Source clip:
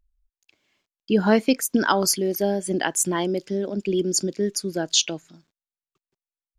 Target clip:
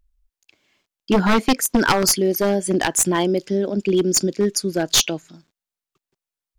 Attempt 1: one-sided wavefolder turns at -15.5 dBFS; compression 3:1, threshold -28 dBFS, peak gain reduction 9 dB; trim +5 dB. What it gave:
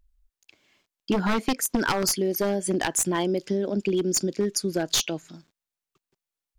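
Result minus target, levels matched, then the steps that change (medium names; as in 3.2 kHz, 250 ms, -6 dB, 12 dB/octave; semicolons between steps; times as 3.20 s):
compression: peak gain reduction +9 dB
remove: compression 3:1, threshold -28 dBFS, peak gain reduction 9 dB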